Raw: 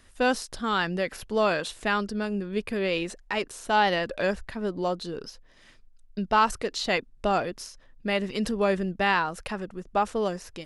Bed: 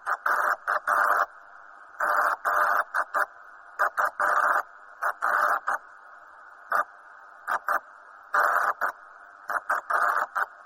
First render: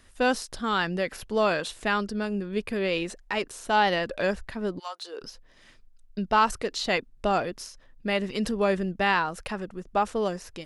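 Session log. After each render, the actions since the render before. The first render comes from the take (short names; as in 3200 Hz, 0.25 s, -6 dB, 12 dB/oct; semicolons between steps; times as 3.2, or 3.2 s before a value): 4.78–5.21 HPF 1300 Hz -> 340 Hz 24 dB/oct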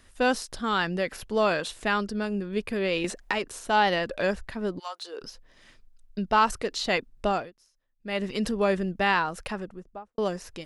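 3.04–3.59 three-band squash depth 100%; 7.28–8.23 dip -23 dB, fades 0.24 s; 9.47–10.18 studio fade out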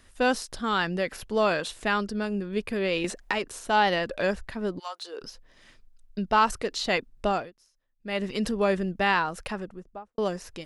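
nothing audible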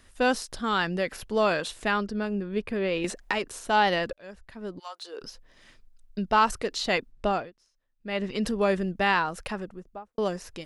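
1.9–3.02 high shelf 6700 Hz -> 3900 Hz -11.5 dB; 4.13–5.28 fade in; 7.11–8.46 air absorption 62 m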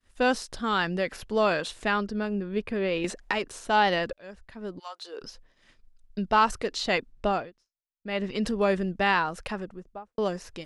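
expander -49 dBFS; Bessel low-pass 8900 Hz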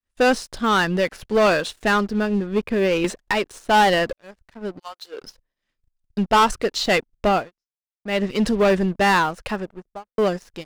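sample leveller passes 3; upward expander 1.5:1, over -38 dBFS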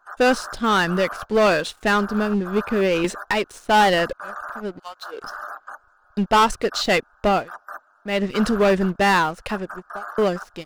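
add bed -10.5 dB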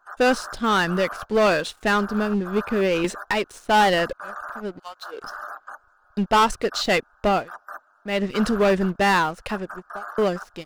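gain -1.5 dB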